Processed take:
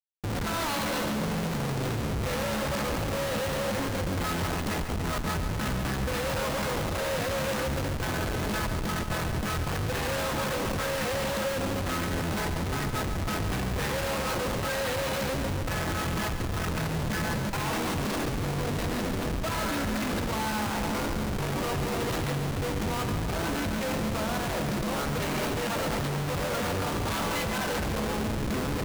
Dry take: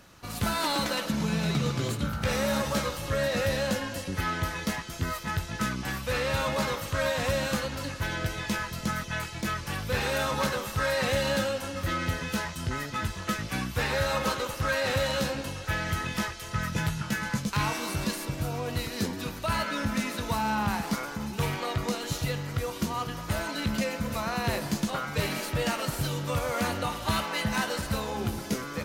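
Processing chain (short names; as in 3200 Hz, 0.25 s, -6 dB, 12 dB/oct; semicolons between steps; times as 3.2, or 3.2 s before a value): Schmitt trigger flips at -33 dBFS; split-band echo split 520 Hz, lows 0.27 s, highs 0.141 s, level -9 dB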